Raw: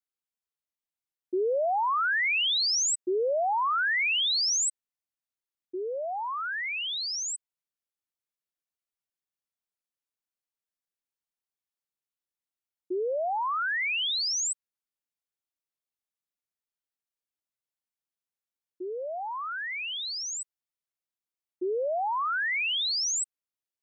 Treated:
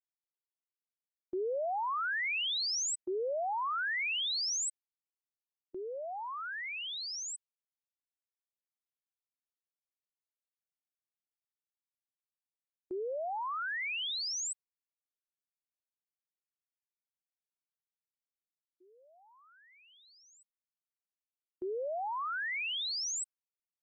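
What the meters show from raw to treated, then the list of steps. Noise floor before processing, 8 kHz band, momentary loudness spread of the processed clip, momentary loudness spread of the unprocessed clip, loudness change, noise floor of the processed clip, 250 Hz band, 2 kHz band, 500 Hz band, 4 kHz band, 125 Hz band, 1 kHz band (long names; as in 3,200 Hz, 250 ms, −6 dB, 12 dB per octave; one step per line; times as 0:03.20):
below −85 dBFS, −7.5 dB, 10 LU, 12 LU, −7.0 dB, below −85 dBFS, −8.0 dB, −7.5 dB, −7.5 dB, −7.5 dB, can't be measured, −7.5 dB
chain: noise gate with hold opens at −30 dBFS
level −7.5 dB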